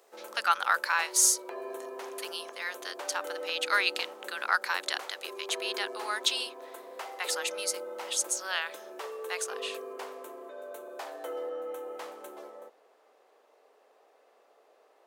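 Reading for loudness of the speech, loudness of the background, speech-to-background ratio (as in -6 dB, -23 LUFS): -30.5 LUFS, -41.5 LUFS, 11.0 dB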